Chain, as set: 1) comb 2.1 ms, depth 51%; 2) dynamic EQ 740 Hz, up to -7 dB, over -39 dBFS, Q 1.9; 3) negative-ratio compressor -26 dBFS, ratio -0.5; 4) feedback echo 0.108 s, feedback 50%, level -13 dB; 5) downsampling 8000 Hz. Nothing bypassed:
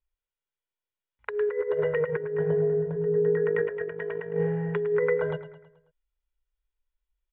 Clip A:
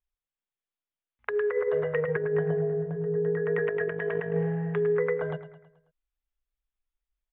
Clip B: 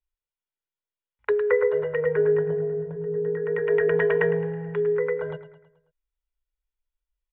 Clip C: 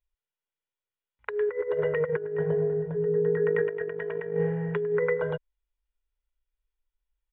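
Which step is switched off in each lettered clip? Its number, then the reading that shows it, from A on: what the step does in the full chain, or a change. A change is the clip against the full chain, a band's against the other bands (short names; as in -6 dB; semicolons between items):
1, momentary loudness spread change -5 LU; 3, crest factor change +2.5 dB; 4, momentary loudness spread change -1 LU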